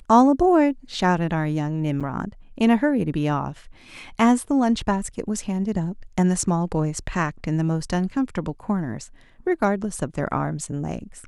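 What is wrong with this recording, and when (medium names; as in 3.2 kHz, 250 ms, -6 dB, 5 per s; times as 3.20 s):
2.00–2.01 s: dropout 6.6 ms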